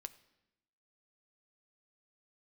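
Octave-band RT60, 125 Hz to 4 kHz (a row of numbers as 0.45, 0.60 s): 1.0, 1.1, 0.95, 0.85, 0.90, 0.80 s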